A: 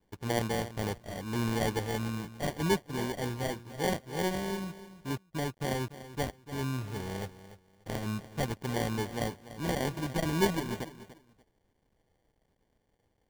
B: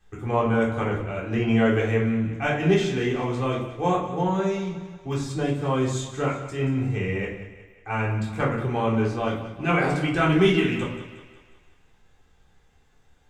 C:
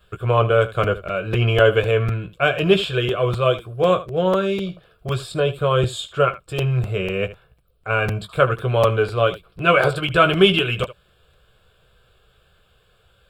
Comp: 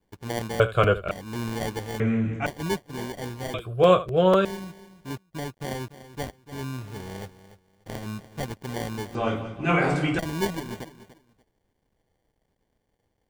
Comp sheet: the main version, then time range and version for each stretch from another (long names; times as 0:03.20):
A
0:00.60–0:01.11: punch in from C
0:02.00–0:02.46: punch in from B
0:03.54–0:04.45: punch in from C
0:09.15–0:10.19: punch in from B